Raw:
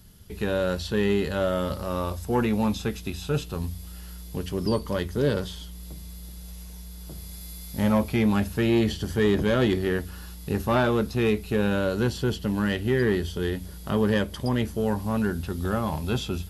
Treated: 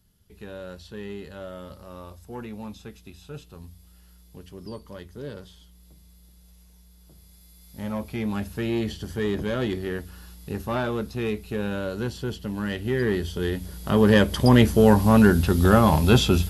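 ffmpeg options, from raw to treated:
-af "volume=3.16,afade=t=in:st=7.53:d=0.99:silence=0.375837,afade=t=in:st=12.55:d=1.28:silence=0.446684,afade=t=in:st=13.83:d=0.73:silence=0.421697"

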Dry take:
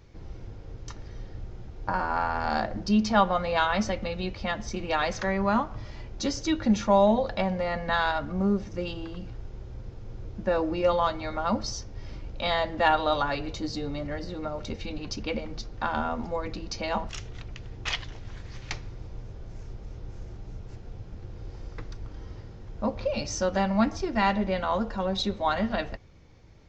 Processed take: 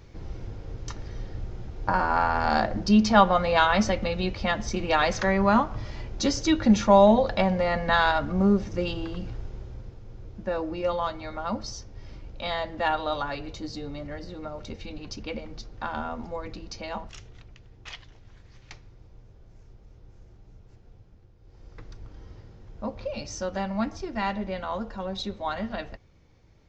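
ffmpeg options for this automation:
-af "volume=7.08,afade=t=out:st=9.34:d=0.67:silence=0.421697,afade=t=out:st=16.55:d=1.12:silence=0.421697,afade=t=out:st=20.92:d=0.47:silence=0.473151,afade=t=in:st=21.39:d=0.51:silence=0.223872"

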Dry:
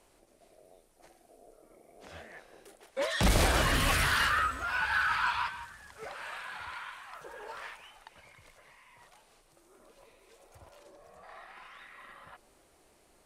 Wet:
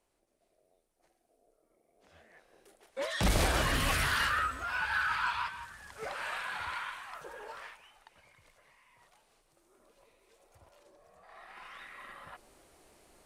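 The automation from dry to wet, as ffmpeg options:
-af "volume=4.22,afade=t=in:st=2.13:d=1.13:silence=0.281838,afade=t=in:st=5.49:d=0.69:silence=0.473151,afade=t=out:st=6.77:d=1.03:silence=0.316228,afade=t=in:st=11.28:d=0.44:silence=0.375837"

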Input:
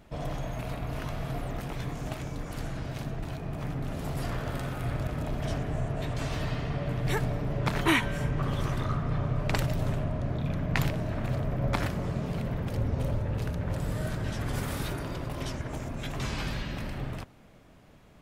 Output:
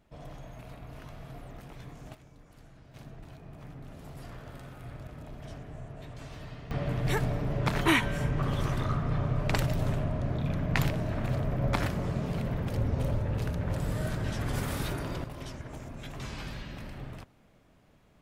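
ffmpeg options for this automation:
-af "asetnsamples=n=441:p=0,asendcmd='2.15 volume volume -19dB;2.94 volume volume -12dB;6.71 volume volume 0dB;15.24 volume volume -6.5dB',volume=0.282"

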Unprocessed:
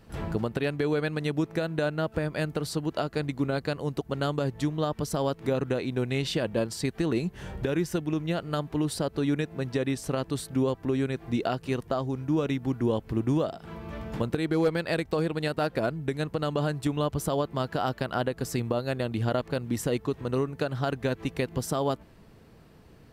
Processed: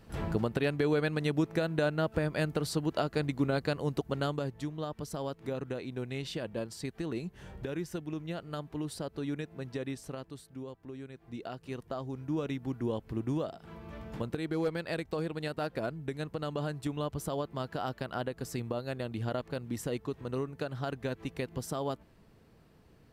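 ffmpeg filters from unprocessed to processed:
-af "volume=2.66,afade=t=out:st=4.04:d=0.53:silence=0.421697,afade=t=out:st=9.9:d=0.52:silence=0.398107,afade=t=in:st=11.15:d=1.16:silence=0.316228"

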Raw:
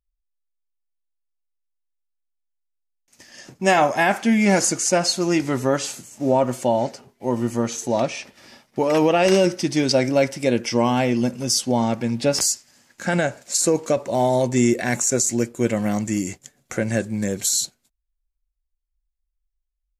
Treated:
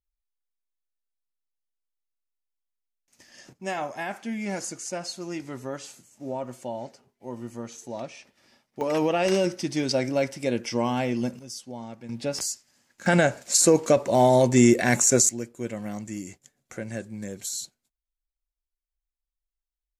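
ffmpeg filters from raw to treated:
-af "asetnsamples=n=441:p=0,asendcmd='3.53 volume volume -14dB;8.81 volume volume -6.5dB;11.39 volume volume -18dB;12.09 volume volume -9.5dB;13.06 volume volume 1dB;15.29 volume volume -11.5dB',volume=0.447"

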